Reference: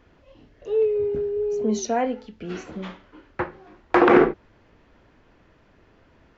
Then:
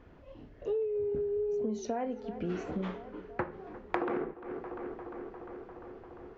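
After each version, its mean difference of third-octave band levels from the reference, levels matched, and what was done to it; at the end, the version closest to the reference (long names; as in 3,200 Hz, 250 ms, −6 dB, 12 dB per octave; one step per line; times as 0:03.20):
5.0 dB: high-shelf EQ 2,100 Hz −11 dB
on a send: tape delay 349 ms, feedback 83%, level −23 dB, low-pass 2,900 Hz
on the sum: downward compressor 20 to 1, threshold −31 dBFS, peak gain reduction 21.5 dB
level +1.5 dB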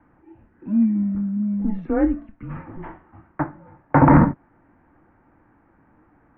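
7.5 dB: notch filter 630 Hz, Q 12
hollow resonant body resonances 510/1,100 Hz, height 9 dB, ringing for 35 ms
single-sideband voice off tune −210 Hz 220–2,200 Hz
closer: first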